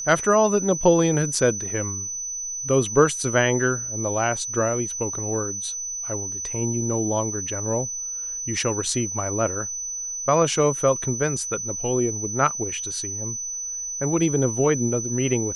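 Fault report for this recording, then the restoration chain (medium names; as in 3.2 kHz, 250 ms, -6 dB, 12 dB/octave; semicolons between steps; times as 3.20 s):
whine 6 kHz -28 dBFS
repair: band-stop 6 kHz, Q 30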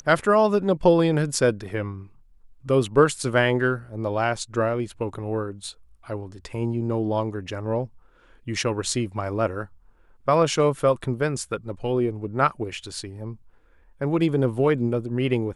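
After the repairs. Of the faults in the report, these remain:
nothing left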